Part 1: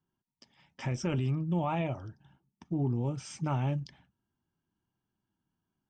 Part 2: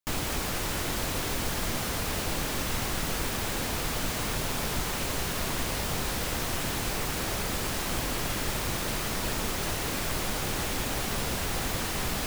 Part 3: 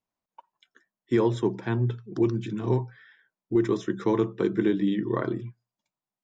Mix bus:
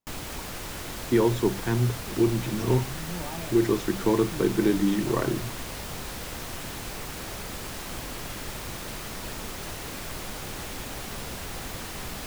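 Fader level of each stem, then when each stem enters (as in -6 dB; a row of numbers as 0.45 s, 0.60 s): -7.5 dB, -5.5 dB, +1.0 dB; 1.60 s, 0.00 s, 0.00 s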